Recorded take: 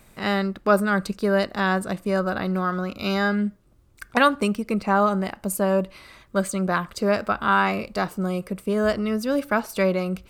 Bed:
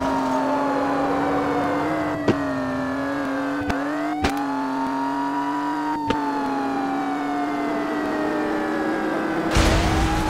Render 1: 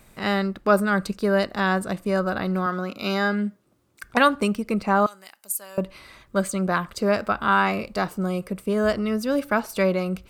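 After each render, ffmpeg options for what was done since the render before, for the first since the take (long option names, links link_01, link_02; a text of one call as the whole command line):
ffmpeg -i in.wav -filter_complex "[0:a]asettb=1/sr,asplit=3[link_01][link_02][link_03];[link_01]atrim=end=2.664[link_04];[link_02]atrim=start=2.66:end=4.04,asetpts=PTS-STARTPTS,afade=type=in:duration=0.004:curve=qsin,afade=type=out:start_time=1.376:duration=0.004:curve=qsin,highpass=170[link_05];[link_03]atrim=start=4.036[link_06];[link_04][link_05]acrossfade=duration=0.004:curve1=hsin:curve2=qsin[link_07];[link_07][link_06]acrossfade=duration=0.004:curve1=qsin:curve2=hsin,asettb=1/sr,asplit=3[link_08][link_09][link_10];[link_08]atrim=end=5.064[link_11];[link_09]atrim=start=5.06:end=5.78,asetpts=PTS-STARTPTS,afade=type=in:duration=0.004:curve=qsin,afade=type=out:start_time=0.716:duration=0.004:curve=qsin,aderivative[link_12];[link_10]atrim=start=5.776[link_13];[link_11][link_12]acrossfade=duration=0.004:curve1=hsin:curve2=qsin[link_14];[link_14][link_13]acrossfade=duration=0.004:curve1=qsin:curve2=hsin" out.wav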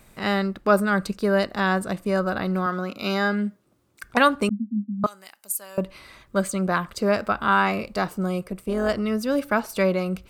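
ffmpeg -i in.wav -filter_complex "[0:a]asettb=1/sr,asplit=3[link_01][link_02][link_03];[link_01]atrim=end=4.494[link_04];[link_02]atrim=start=4.49:end=5.04,asetpts=PTS-STARTPTS,afade=type=in:duration=0.004:curve=qsin,afade=type=out:start_time=0.546:duration=0.004:curve=qsin,asuperpass=centerf=230:order=12:qfactor=3.2[link_05];[link_03]atrim=start=5.036[link_06];[link_04][link_05]acrossfade=duration=0.004:curve1=hsin:curve2=qsin[link_07];[link_07][link_06]acrossfade=duration=0.004:curve1=qsin:curve2=hsin,asettb=1/sr,asplit=3[link_08][link_09][link_10];[link_08]atrim=end=8.434[link_11];[link_09]atrim=start=8.43:end=8.9,asetpts=PTS-STARTPTS,afade=type=in:duration=0.004:curve=qsin,afade=type=out:start_time=0.466:duration=0.004:curve=qsin,tremolo=f=170:d=0.519[link_12];[link_10]atrim=start=8.896[link_13];[link_11][link_12]acrossfade=duration=0.004:curve1=hsin:curve2=qsin[link_14];[link_14][link_13]acrossfade=duration=0.004:curve1=qsin:curve2=hsin" out.wav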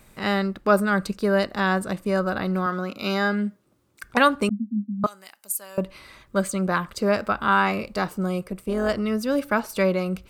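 ffmpeg -i in.wav -af "bandreject=frequency=690:width=19" out.wav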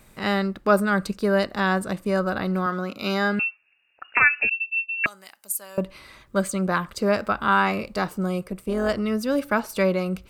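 ffmpeg -i in.wav -filter_complex "[0:a]asettb=1/sr,asplit=3[link_01][link_02][link_03];[link_01]atrim=end=3.394[link_04];[link_02]atrim=start=3.39:end=5.06,asetpts=PTS-STARTPTS,afade=type=in:duration=0.004:curve=qsin,afade=type=out:start_time=1.666:duration=0.004:curve=qsin,lowpass=frequency=2500:width_type=q:width=0.5098,lowpass=frequency=2500:width_type=q:width=0.6013,lowpass=frequency=2500:width_type=q:width=0.9,lowpass=frequency=2500:width_type=q:width=2.563,afreqshift=-2900[link_05];[link_03]atrim=start=5.056[link_06];[link_04][link_05]acrossfade=duration=0.004:curve1=hsin:curve2=qsin[link_07];[link_07][link_06]acrossfade=duration=0.004:curve1=qsin:curve2=hsin" out.wav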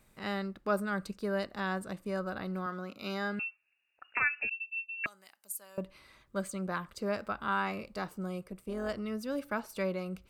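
ffmpeg -i in.wav -af "volume=-12dB" out.wav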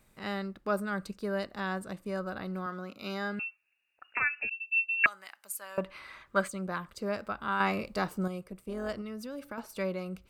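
ffmpeg -i in.wav -filter_complex "[0:a]asplit=3[link_01][link_02][link_03];[link_01]afade=type=out:start_time=4.7:duration=0.02[link_04];[link_02]equalizer=frequency=1500:width=0.46:gain=13.5,afade=type=in:start_time=4.7:duration=0.02,afade=type=out:start_time=6.47:duration=0.02[link_05];[link_03]afade=type=in:start_time=6.47:duration=0.02[link_06];[link_04][link_05][link_06]amix=inputs=3:normalize=0,asettb=1/sr,asplit=3[link_07][link_08][link_09];[link_07]atrim=end=7.604[link_10];[link_08]atrim=start=7.6:end=8.28,asetpts=PTS-STARTPTS,afade=type=in:duration=0.004:curve=qsin,afade=type=out:start_time=0.676:duration=0.004:curve=qsin,acontrast=54[link_11];[link_09]atrim=start=8.276[link_12];[link_10][link_11]acrossfade=duration=0.004:curve1=hsin:curve2=qsin[link_13];[link_13][link_12]acrossfade=duration=0.004:curve1=qsin:curve2=hsin,asettb=1/sr,asplit=3[link_14][link_15][link_16];[link_14]atrim=end=9.014[link_17];[link_15]atrim=start=9.01:end=9.58,asetpts=PTS-STARTPTS,afade=type=in:duration=0.004:curve=qsin,afade=type=out:start_time=0.566:duration=0.004:curve=qsin,acompressor=threshold=-36dB:ratio=5:attack=3.2:release=140:knee=1:detection=peak[link_18];[link_16]atrim=start=9.576[link_19];[link_17][link_18]acrossfade=duration=0.004:curve1=hsin:curve2=qsin[link_20];[link_20][link_19]acrossfade=duration=0.004:curve1=qsin:curve2=hsin" out.wav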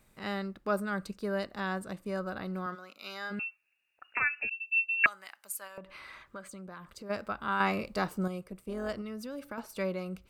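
ffmpeg -i in.wav -filter_complex "[0:a]asplit=3[link_01][link_02][link_03];[link_01]afade=type=out:start_time=2.74:duration=0.02[link_04];[link_02]highpass=frequency=1200:poles=1,afade=type=in:start_time=2.74:duration=0.02,afade=type=out:start_time=3.3:duration=0.02[link_05];[link_03]afade=type=in:start_time=3.3:duration=0.02[link_06];[link_04][link_05][link_06]amix=inputs=3:normalize=0,asplit=3[link_07][link_08][link_09];[link_07]afade=type=out:start_time=5.67:duration=0.02[link_10];[link_08]acompressor=threshold=-43dB:ratio=4:attack=3.2:release=140:knee=1:detection=peak,afade=type=in:start_time=5.67:duration=0.02,afade=type=out:start_time=7.09:duration=0.02[link_11];[link_09]afade=type=in:start_time=7.09:duration=0.02[link_12];[link_10][link_11][link_12]amix=inputs=3:normalize=0" out.wav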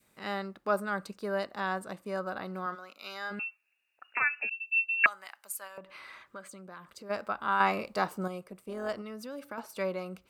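ffmpeg -i in.wav -af "highpass=frequency=240:poles=1,adynamicequalizer=threshold=0.00708:dfrequency=870:dqfactor=1.1:tfrequency=870:tqfactor=1.1:attack=5:release=100:ratio=0.375:range=2.5:mode=boostabove:tftype=bell" out.wav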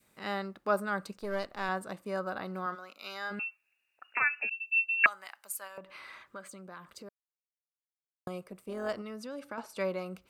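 ffmpeg -i in.wav -filter_complex "[0:a]asettb=1/sr,asplit=3[link_01][link_02][link_03];[link_01]atrim=end=1.174[link_04];[link_02]atrim=start=1.17:end=1.69,asetpts=PTS-STARTPTS,afade=type=in:duration=0.004:curve=qsin,afade=type=out:start_time=0.516:duration=0.004:curve=qsin,aeval=exprs='if(lt(val(0),0),0.447*val(0),val(0))':channel_layout=same[link_05];[link_03]atrim=start=1.686[link_06];[link_04][link_05]acrossfade=duration=0.004:curve1=hsin:curve2=qsin[link_07];[link_07][link_06]acrossfade=duration=0.004:curve1=qsin:curve2=hsin,asettb=1/sr,asplit=3[link_08][link_09][link_10];[link_08]atrim=end=9.194[link_11];[link_09]atrim=start=9.19:end=9.8,asetpts=PTS-STARTPTS,afade=type=in:duration=0.004:curve=qsin,afade=type=out:start_time=0.606:duration=0.004:curve=qsin,lowpass=10000[link_12];[link_10]atrim=start=9.796[link_13];[link_11][link_12]acrossfade=duration=0.004:curve1=hsin:curve2=qsin[link_14];[link_14][link_13]acrossfade=duration=0.004:curve1=qsin:curve2=hsin,asplit=3[link_15][link_16][link_17];[link_15]atrim=end=7.09,asetpts=PTS-STARTPTS,afade=type=out:start_time=7.086:duration=0.004:curve=hsin[link_18];[link_16]atrim=start=7.09:end=8.27,asetpts=PTS-STARTPTS,volume=0[link_19];[link_17]atrim=start=8.27,asetpts=PTS-STARTPTS,afade=type=in:duration=0.004:curve=hsin[link_20];[link_18][link_19][link_20]concat=n=3:v=0:a=1" out.wav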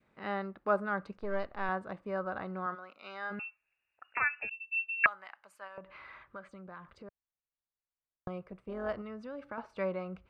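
ffmpeg -i in.wav -af "lowpass=2100,asubboost=boost=3.5:cutoff=120" out.wav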